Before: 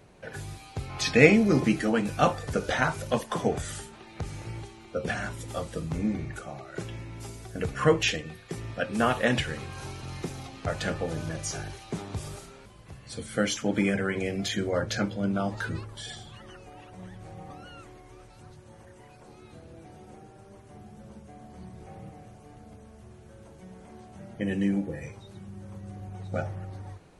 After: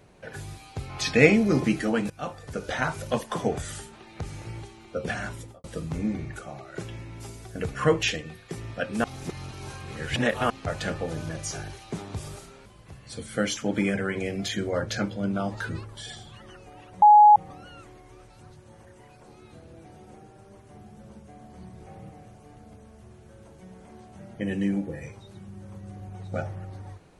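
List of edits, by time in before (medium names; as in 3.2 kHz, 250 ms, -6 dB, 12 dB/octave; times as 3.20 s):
2.10–3.01 s: fade in, from -18 dB
5.35–5.64 s: studio fade out
9.04–10.50 s: reverse
17.02–17.36 s: bleep 838 Hz -9.5 dBFS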